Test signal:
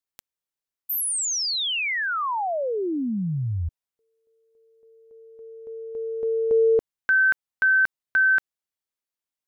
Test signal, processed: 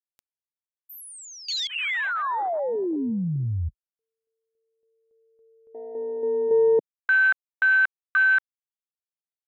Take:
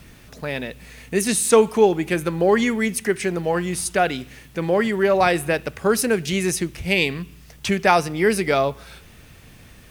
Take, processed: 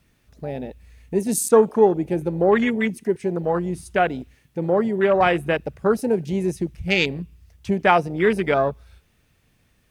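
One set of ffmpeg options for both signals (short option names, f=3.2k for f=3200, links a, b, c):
-af "afwtdn=0.0631"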